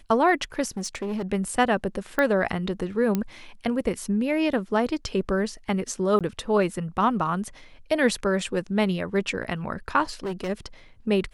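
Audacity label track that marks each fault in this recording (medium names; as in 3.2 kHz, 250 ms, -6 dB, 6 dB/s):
0.700000	1.220000	clipped -25.5 dBFS
2.190000	2.190000	pop -11 dBFS
3.150000	3.150000	pop -12 dBFS
6.190000	6.210000	dropout 17 ms
10.100000	10.500000	clipped -26 dBFS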